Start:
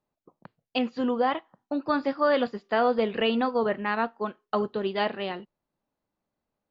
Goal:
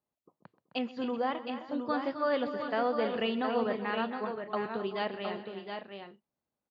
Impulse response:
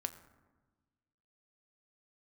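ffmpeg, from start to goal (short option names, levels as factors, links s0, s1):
-filter_complex "[0:a]highpass=55,asplit=2[s0][s1];[s1]aecho=0:1:129|261|292|379|715|755:0.126|0.282|0.112|0.112|0.473|0.133[s2];[s0][s2]amix=inputs=2:normalize=0,volume=0.447"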